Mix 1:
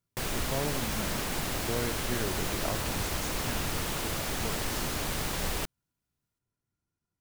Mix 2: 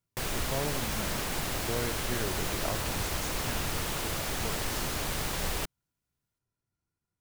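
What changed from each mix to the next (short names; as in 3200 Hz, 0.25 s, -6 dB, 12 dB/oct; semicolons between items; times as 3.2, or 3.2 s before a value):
master: add bell 240 Hz -2.5 dB 1 oct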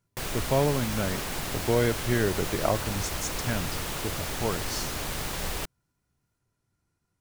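speech +10.5 dB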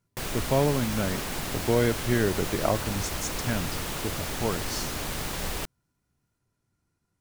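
master: add bell 240 Hz +2.5 dB 1 oct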